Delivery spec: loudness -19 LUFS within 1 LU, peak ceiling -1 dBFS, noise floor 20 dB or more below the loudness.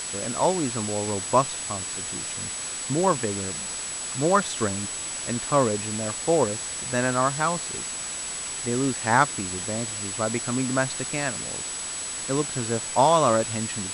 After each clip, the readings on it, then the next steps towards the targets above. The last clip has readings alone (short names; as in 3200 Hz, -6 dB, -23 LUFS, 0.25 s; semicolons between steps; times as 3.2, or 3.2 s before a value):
steady tone 7900 Hz; tone level -32 dBFS; noise floor -33 dBFS; noise floor target -45 dBFS; loudness -25.0 LUFS; peak -4.5 dBFS; loudness target -19.0 LUFS
-> notch 7900 Hz, Q 30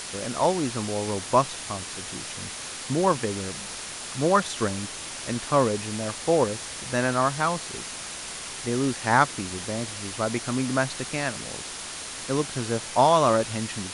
steady tone none; noise floor -37 dBFS; noise floor target -47 dBFS
-> denoiser 10 dB, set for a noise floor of -37 dBFS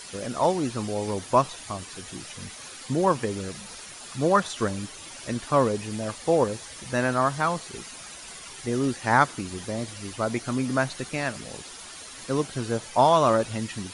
noise floor -42 dBFS; noise floor target -46 dBFS
-> denoiser 6 dB, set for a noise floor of -42 dBFS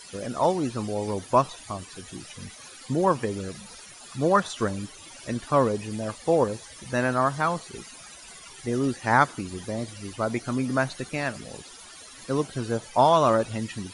noise floor -46 dBFS; loudness -26.0 LUFS; peak -4.5 dBFS; loudness target -19.0 LUFS
-> gain +7 dB; limiter -1 dBFS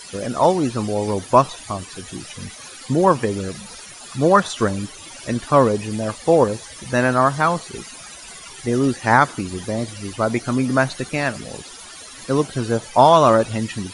loudness -19.0 LUFS; peak -1.0 dBFS; noise floor -39 dBFS